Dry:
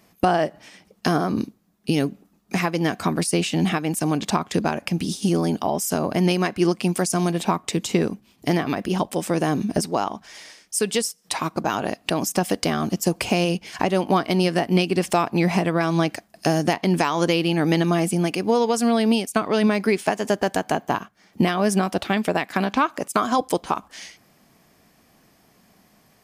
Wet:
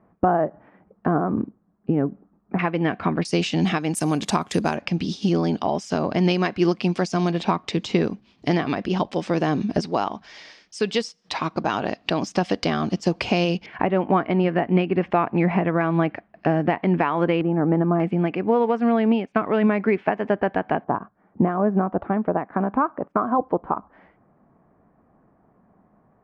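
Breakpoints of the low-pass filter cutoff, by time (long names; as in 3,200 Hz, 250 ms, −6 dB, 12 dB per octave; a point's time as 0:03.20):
low-pass filter 24 dB per octave
1,400 Hz
from 0:02.59 2,800 Hz
from 0:03.25 6,100 Hz
from 0:03.95 11,000 Hz
from 0:04.76 5,000 Hz
from 0:13.66 2,300 Hz
from 0:17.41 1,300 Hz
from 0:18.00 2,300 Hz
from 0:20.84 1,300 Hz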